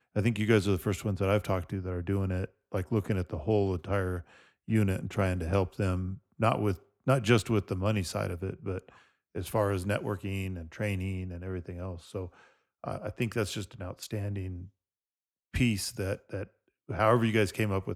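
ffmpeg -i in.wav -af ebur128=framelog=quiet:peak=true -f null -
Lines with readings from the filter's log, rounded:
Integrated loudness:
  I:         -31.2 LUFS
  Threshold: -41.5 LUFS
Loudness range:
  LRA:         7.5 LU
  Threshold: -52.3 LUFS
  LRA low:   -37.1 LUFS
  LRA high:  -29.6 LUFS
True peak:
  Peak:      -10.1 dBFS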